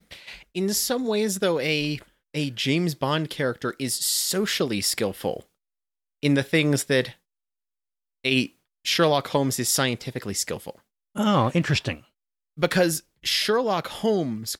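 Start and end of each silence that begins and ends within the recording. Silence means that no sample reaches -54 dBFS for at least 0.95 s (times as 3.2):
7.17–8.24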